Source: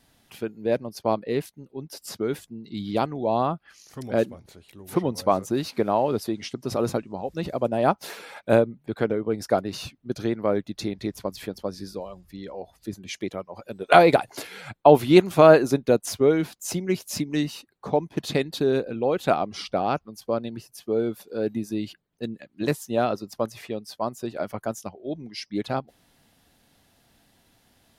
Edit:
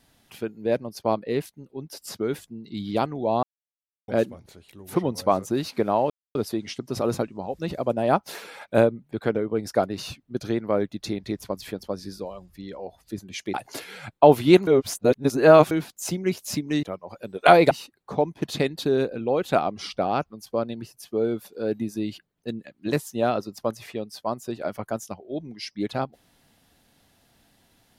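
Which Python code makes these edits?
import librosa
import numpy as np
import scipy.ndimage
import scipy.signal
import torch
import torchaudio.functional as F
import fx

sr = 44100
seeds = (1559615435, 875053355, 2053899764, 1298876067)

y = fx.edit(x, sr, fx.silence(start_s=3.43, length_s=0.65),
    fx.insert_silence(at_s=6.1, length_s=0.25),
    fx.move(start_s=13.29, length_s=0.88, to_s=17.46),
    fx.reverse_span(start_s=15.3, length_s=1.04), tone=tone)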